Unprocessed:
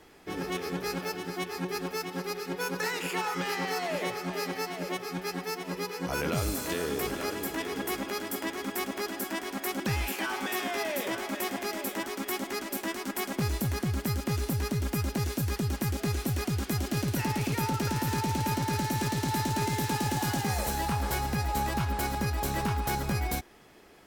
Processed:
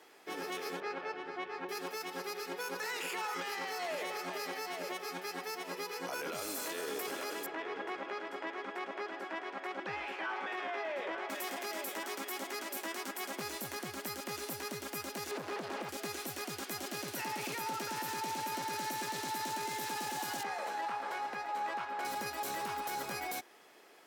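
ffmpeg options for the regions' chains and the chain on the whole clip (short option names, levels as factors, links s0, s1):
-filter_complex "[0:a]asettb=1/sr,asplit=3[s0][s1][s2];[s0]atrim=end=0.804[s3];[s1]atrim=start=0.8:end=1.69,asetpts=PTS-STARTPTS,afade=t=in:d=0.004:c=qsin,afade=t=out:st=0.886:d=0.004:c=qsin,highpass=240,lowpass=2400,aeval=exprs='val(0)+0.00501*(sin(2*PI*50*n/s)+sin(2*PI*2*50*n/s)/2+sin(2*PI*3*50*n/s)/3+sin(2*PI*4*50*n/s)/4+sin(2*PI*5*50*n/s)/5)':c=same[s4];[s2]atrim=start=1.686[s5];[s3][s4]acrossfade=d=0.004:c1=hsin:c2=qsin[s6];[s6][s5]acrossfade=d=0.004:c1=qsin:c2=hsin,asettb=1/sr,asplit=3[s7][s8][s9];[s7]atrim=end=7.464[s10];[s8]atrim=start=7.46:end=11.3,asetpts=PTS-STARTPTS,afade=t=in:d=0.004:c=qsin,afade=t=out:st=3.836:d=0.004:c=qsin,lowpass=2300,equalizer=f=240:t=o:w=0.23:g=-14.5[s11];[s9]atrim=start=11.296[s12];[s10][s11]acrossfade=d=0.004:c1=hsin:c2=qsin[s13];[s13][s12]acrossfade=d=0.004:c1=qsin:c2=hsin,asettb=1/sr,asplit=3[s14][s15][s16];[s14]atrim=end=15.314[s17];[s15]atrim=start=15.31:end=15.89,asetpts=PTS-STARTPTS,afade=t=in:d=0.004:c=qsin,afade=t=out:st=0.576:d=0.004:c=qsin,highshelf=f=8500:g=-9,acrossover=split=230|680[s18][s19][s20];[s18]acompressor=threshold=0.0178:ratio=4[s21];[s19]acompressor=threshold=0.00891:ratio=4[s22];[s20]acompressor=threshold=0.00224:ratio=4[s23];[s21][s22][s23]amix=inputs=3:normalize=0,asplit=2[s24][s25];[s25]highpass=f=720:p=1,volume=50.1,asoftclip=type=tanh:threshold=0.0562[s26];[s24][s26]amix=inputs=2:normalize=0,lowpass=f=1400:p=1,volume=0.501[s27];[s16]atrim=start=15.886[s28];[s17][s27]acrossfade=d=0.004:c1=hsin:c2=qsin[s29];[s29][s28]acrossfade=d=0.004:c1=qsin:c2=hsin,asettb=1/sr,asplit=3[s30][s31][s32];[s30]atrim=end=20.434[s33];[s31]atrim=start=20.43:end=22.05,asetpts=PTS-STARTPTS,afade=t=in:d=0.004:c=qsin,afade=t=out:st=1.616:d=0.004:c=qsin,lowpass=1700,aemphasis=mode=production:type=riaa[s34];[s32]atrim=start=22.046[s35];[s33][s34]acrossfade=d=0.004:c1=hsin:c2=qsin[s36];[s36][s35]acrossfade=d=0.004:c1=qsin:c2=hsin,highpass=420,alimiter=level_in=1.5:limit=0.0631:level=0:latency=1:release=16,volume=0.668,volume=0.794"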